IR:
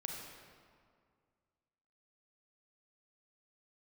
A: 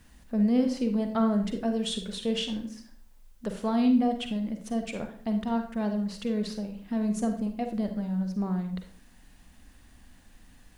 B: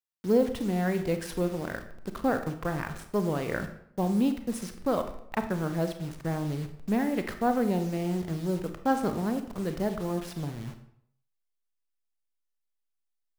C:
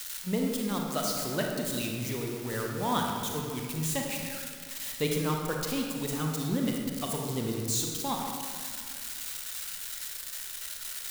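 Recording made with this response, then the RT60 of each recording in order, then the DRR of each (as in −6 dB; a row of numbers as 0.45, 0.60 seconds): C; 0.50, 0.70, 2.1 seconds; 5.5, 7.5, 0.0 decibels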